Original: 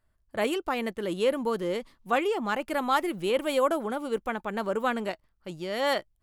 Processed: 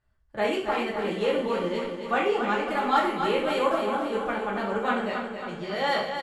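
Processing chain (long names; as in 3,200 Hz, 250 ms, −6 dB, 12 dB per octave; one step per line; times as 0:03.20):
high-frequency loss of the air 69 metres
repeating echo 273 ms, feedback 57%, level −7 dB
convolution reverb, pre-delay 3 ms, DRR −5 dB
level −3.5 dB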